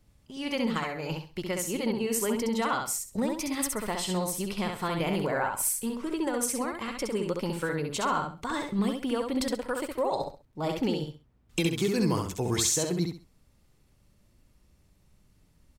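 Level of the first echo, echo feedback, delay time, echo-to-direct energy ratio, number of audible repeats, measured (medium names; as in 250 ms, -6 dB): -4.0 dB, 25%, 66 ms, -3.5 dB, 3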